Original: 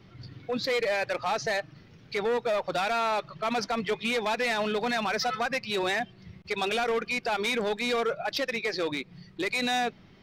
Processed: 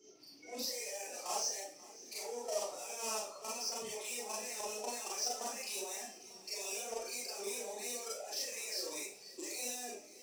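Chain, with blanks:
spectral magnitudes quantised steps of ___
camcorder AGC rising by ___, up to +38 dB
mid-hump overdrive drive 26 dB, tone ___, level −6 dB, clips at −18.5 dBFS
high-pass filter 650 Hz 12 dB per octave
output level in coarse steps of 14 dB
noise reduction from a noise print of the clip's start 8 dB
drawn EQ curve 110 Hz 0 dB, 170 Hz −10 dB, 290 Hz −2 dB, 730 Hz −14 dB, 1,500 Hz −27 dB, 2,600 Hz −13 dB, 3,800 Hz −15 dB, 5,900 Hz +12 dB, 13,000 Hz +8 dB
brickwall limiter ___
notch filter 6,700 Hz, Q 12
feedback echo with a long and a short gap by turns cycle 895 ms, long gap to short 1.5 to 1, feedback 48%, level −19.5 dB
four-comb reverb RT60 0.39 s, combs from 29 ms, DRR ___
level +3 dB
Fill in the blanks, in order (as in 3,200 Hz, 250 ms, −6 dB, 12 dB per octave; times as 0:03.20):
30 dB, 5.4 dB per second, 1,000 Hz, −36.5 dBFS, −6 dB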